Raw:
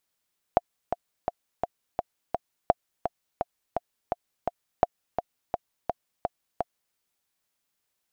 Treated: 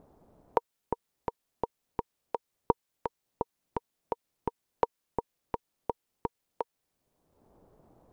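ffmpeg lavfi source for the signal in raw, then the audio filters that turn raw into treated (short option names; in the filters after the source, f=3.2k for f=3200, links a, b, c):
-f lavfi -i "aevalsrc='pow(10,(-5-8*gte(mod(t,6*60/169),60/169))/20)*sin(2*PI*702*mod(t,60/169))*exp(-6.91*mod(t,60/169)/0.03)':d=6.39:s=44100"
-filter_complex "[0:a]acrossover=split=650[a][b];[a]acompressor=mode=upward:threshold=-29dB:ratio=2.5[c];[c][b]amix=inputs=2:normalize=0,aeval=exprs='val(0)*sin(2*PI*240*n/s)':c=same"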